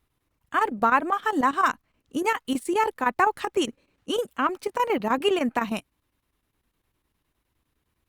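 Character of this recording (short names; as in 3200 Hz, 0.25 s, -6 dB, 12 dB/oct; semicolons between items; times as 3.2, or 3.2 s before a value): chopped level 9.8 Hz, depth 65%, duty 80%; Opus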